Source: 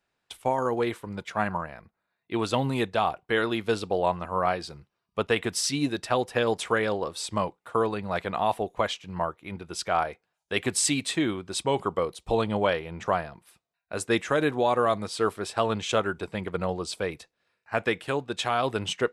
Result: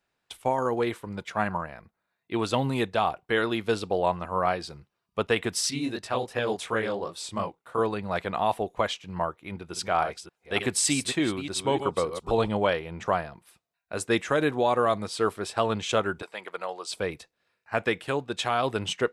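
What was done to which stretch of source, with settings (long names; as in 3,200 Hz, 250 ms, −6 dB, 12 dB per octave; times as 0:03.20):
0:05.70–0:07.79: chorus effect 2.8 Hz, delay 18 ms, depth 7.7 ms
0:09.40–0:12.52: delay that plays each chunk backwards 298 ms, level −9.5 dB
0:16.22–0:16.92: high-pass filter 650 Hz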